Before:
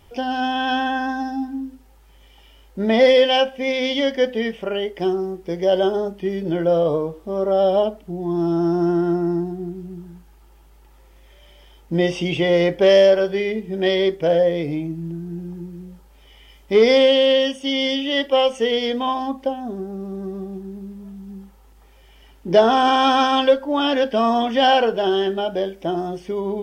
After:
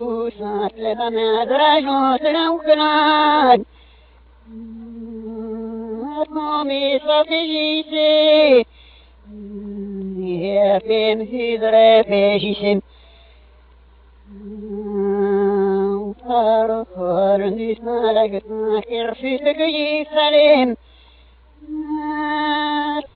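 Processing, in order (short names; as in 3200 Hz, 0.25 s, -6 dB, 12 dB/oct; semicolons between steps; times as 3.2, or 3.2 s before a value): whole clip reversed; downsampling 8000 Hz; varispeed +15%; gain +2 dB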